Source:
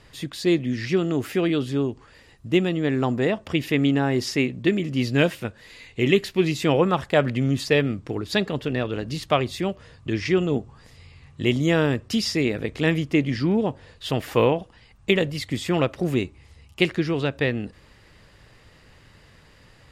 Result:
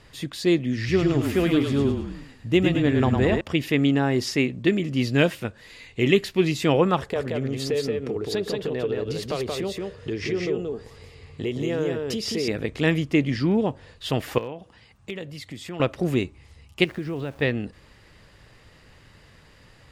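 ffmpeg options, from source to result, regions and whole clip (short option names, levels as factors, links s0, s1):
-filter_complex "[0:a]asettb=1/sr,asplit=3[s0][s1][s2];[s0]atrim=end=0.774[s3];[s1]atrim=start=0.77:end=3.41,asetpts=PTS-STARTPTS,afade=t=in:d=0.004:c=qsin,afade=t=out:st=2.636:d=0.004:c=qsin,equalizer=f=120:w=5.8:g=6,asplit=7[s4][s5][s6][s7][s8][s9][s10];[s5]adelay=106,afreqshift=-31,volume=0.596[s11];[s6]adelay=212,afreqshift=-62,volume=0.279[s12];[s7]adelay=318,afreqshift=-93,volume=0.132[s13];[s8]adelay=424,afreqshift=-124,volume=0.0617[s14];[s9]adelay=530,afreqshift=-155,volume=0.0292[s15];[s10]adelay=636,afreqshift=-186,volume=0.0136[s16];[s4][s11][s12][s13][s14][s15][s16]amix=inputs=7:normalize=0,atrim=end_sample=116424[s17];[s2]atrim=start=3.406[s18];[s3][s17]acrossfade=d=0.004:c1=hsin:c2=qsin[s19];[s19][s18]acrossfade=d=0.004:c1=qsin:c2=hsin,asettb=1/sr,asplit=3[s20][s21][s22];[s20]atrim=end=6.984[s23];[s21]atrim=start=6.98:end=12.48,asetpts=PTS-STARTPTS,afade=t=in:d=0.004:c=qsin,afade=t=out:st=5.496:d=0.004:c=qsin,equalizer=f=440:t=o:w=0.47:g=13,acompressor=threshold=0.0447:ratio=3:attack=3.2:release=140:knee=1:detection=peak,aecho=1:1:177:0.708,atrim=end_sample=242550[s24];[s22]atrim=start=12.476[s25];[s23][s24]acrossfade=d=0.004:c1=hsin:c2=qsin[s26];[s26][s25]acrossfade=d=0.004:c1=qsin:c2=hsin,asettb=1/sr,asplit=3[s27][s28][s29];[s27]atrim=end=14.384[s30];[s28]atrim=start=14.38:end=15.8,asetpts=PTS-STARTPTS,afade=t=in:d=0.004:c=qsin,afade=t=out:st=1.416:d=0.004:c=qsin,highpass=73,asoftclip=type=hard:threshold=0.473,acompressor=threshold=0.00891:ratio=2:attack=3.2:release=140:knee=1:detection=peak[s31];[s29]atrim=start=15.796[s32];[s30][s31]acrossfade=d=0.004:c1=hsin:c2=qsin[s33];[s33][s32]acrossfade=d=0.004:c1=qsin:c2=hsin,asettb=1/sr,asplit=3[s34][s35][s36];[s34]atrim=end=16.844[s37];[s35]atrim=start=16.84:end=17.42,asetpts=PTS-STARTPTS,afade=t=in:d=0.004:c=qsin,afade=t=out:st=0.576:d=0.004:c=qsin,acompressor=threshold=0.0501:ratio=4:attack=3.2:release=140:knee=1:detection=peak,lowpass=f=1500:p=1,aeval=exprs='val(0)*gte(abs(val(0)),0.00473)':c=same[s38];[s36]atrim=start=17.416[s39];[s37][s38]acrossfade=d=0.004:c1=hsin:c2=qsin[s40];[s40][s39]acrossfade=d=0.004:c1=qsin:c2=hsin"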